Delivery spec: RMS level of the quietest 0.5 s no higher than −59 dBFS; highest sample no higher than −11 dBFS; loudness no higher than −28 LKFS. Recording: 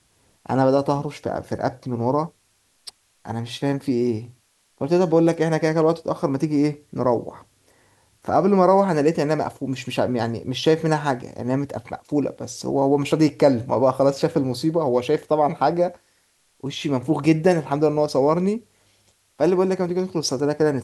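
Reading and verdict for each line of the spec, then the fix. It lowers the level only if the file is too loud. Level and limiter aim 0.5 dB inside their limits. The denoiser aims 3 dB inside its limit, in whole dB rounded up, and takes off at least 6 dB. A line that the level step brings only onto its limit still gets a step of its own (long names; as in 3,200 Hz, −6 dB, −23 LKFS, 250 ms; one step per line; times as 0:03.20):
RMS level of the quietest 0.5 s −64 dBFS: in spec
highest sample −4.0 dBFS: out of spec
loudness −21.5 LKFS: out of spec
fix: level −7 dB
brickwall limiter −11.5 dBFS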